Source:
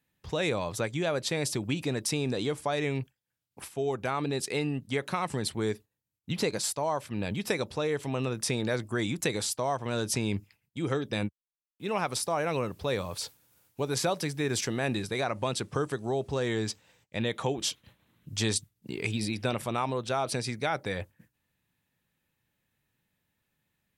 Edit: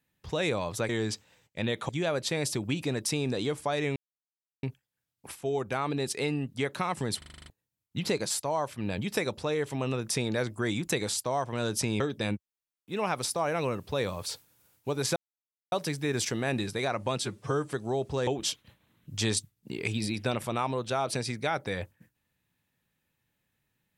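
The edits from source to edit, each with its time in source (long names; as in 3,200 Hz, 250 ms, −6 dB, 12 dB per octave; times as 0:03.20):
0:02.96: splice in silence 0.67 s
0:05.51: stutter in place 0.04 s, 8 plays
0:10.33–0:10.92: remove
0:14.08: splice in silence 0.56 s
0:15.57–0:15.91: time-stretch 1.5×
0:16.46–0:17.46: move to 0:00.89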